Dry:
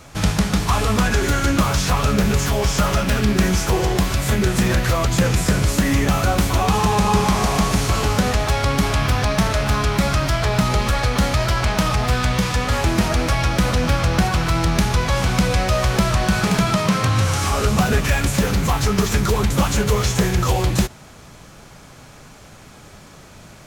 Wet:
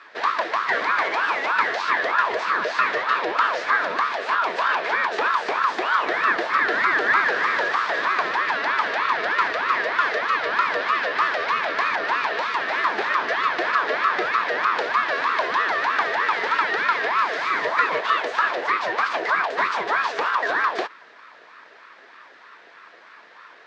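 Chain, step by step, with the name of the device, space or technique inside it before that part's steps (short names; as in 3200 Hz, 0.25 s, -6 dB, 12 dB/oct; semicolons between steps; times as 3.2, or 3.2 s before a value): voice changer toy (ring modulator with a swept carrier 880 Hz, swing 40%, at 3.2 Hz; speaker cabinet 470–4000 Hz, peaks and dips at 550 Hz -5 dB, 790 Hz -9 dB, 1700 Hz +8 dB, 3000 Hz -4 dB)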